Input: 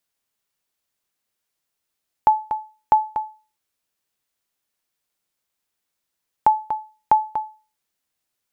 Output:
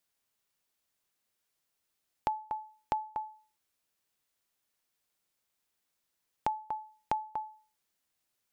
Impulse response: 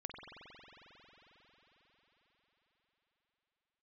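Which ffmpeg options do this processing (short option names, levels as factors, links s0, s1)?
-af "acompressor=threshold=0.0178:ratio=2.5,volume=0.794"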